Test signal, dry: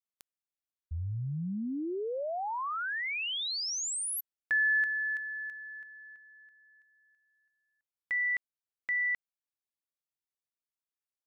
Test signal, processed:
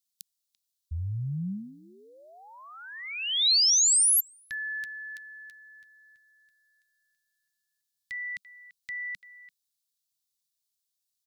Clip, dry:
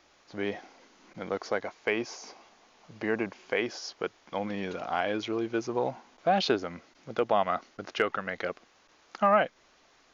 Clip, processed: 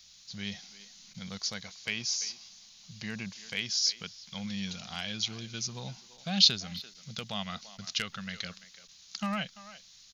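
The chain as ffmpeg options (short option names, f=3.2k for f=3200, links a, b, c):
-filter_complex "[0:a]firequalizer=gain_entry='entry(190,0);entry(300,-24);entry(3900,10)':delay=0.05:min_phase=1,asplit=2[a][b];[b]adelay=340,highpass=300,lowpass=3.4k,asoftclip=type=hard:threshold=-21.5dB,volume=-15dB[c];[a][c]amix=inputs=2:normalize=0,volume=3dB"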